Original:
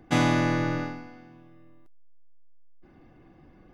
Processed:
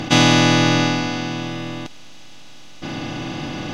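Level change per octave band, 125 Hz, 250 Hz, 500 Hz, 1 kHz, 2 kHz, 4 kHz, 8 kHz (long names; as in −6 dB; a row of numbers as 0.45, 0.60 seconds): +9.5, +10.0, +9.5, +10.0, +11.5, +19.5, +17.5 decibels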